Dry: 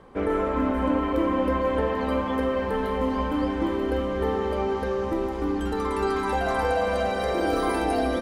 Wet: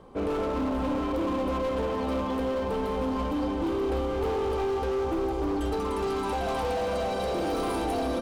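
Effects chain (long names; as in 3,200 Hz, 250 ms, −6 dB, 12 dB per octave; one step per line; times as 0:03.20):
0:03.64–0:05.78: comb filter 2.5 ms, depth 67%
hard clipping −25 dBFS, distortion −9 dB
parametric band 1,800 Hz −9 dB 0.74 octaves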